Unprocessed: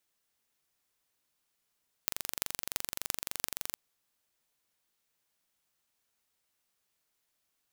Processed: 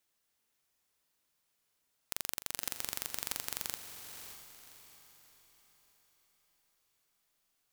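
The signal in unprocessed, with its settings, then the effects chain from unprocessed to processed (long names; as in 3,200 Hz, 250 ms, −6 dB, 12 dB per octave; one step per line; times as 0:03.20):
impulse train 23.5 per second, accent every 8, −1.5 dBFS 1.69 s
wave folding −6.5 dBFS
on a send: feedback delay with all-pass diffusion 587 ms, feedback 42%, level −8.5 dB
on the sum: regular buffer underruns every 0.32 s, samples 2,048, repeat, from 0:00.39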